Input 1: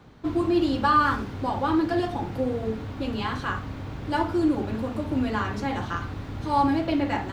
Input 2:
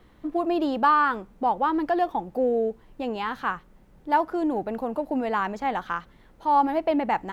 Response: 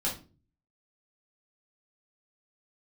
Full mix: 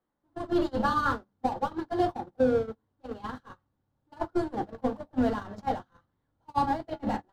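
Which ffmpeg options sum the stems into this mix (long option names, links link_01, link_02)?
-filter_complex "[0:a]volume=-6dB,asplit=2[link_01][link_02];[link_02]volume=-11.5dB[link_03];[1:a]acompressor=threshold=-24dB:ratio=6,asplit=2[link_04][link_05];[link_05]highpass=frequency=720:poles=1,volume=32dB,asoftclip=type=tanh:threshold=-17.5dB[link_06];[link_04][link_06]amix=inputs=2:normalize=0,lowpass=frequency=1100:poles=1,volume=-6dB,volume=-6.5dB,asplit=2[link_07][link_08];[link_08]volume=-10dB[link_09];[2:a]atrim=start_sample=2205[link_10];[link_03][link_09]amix=inputs=2:normalize=0[link_11];[link_11][link_10]afir=irnorm=-1:irlink=0[link_12];[link_01][link_07][link_12]amix=inputs=3:normalize=0,agate=range=-40dB:threshold=-24dB:ratio=16:detection=peak,equalizer=frequency=2400:width=2.3:gain=-9"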